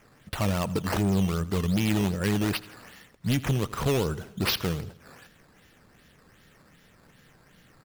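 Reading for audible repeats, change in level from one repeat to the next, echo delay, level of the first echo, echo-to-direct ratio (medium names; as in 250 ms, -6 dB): 4, -5.0 dB, 83 ms, -19.5 dB, -18.0 dB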